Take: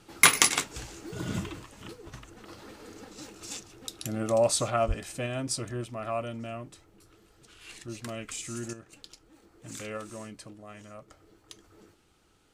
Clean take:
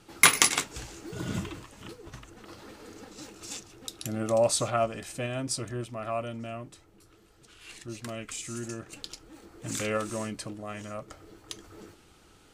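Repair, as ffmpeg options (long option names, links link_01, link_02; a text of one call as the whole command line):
ffmpeg -i in.wav -filter_complex "[0:a]asplit=3[link_01][link_02][link_03];[link_01]afade=type=out:start_time=4.87:duration=0.02[link_04];[link_02]highpass=frequency=140:width=0.5412,highpass=frequency=140:width=1.3066,afade=type=in:start_time=4.87:duration=0.02,afade=type=out:start_time=4.99:duration=0.02[link_05];[link_03]afade=type=in:start_time=4.99:duration=0.02[link_06];[link_04][link_05][link_06]amix=inputs=3:normalize=0,asetnsamples=nb_out_samples=441:pad=0,asendcmd='8.73 volume volume 8dB',volume=0dB" out.wav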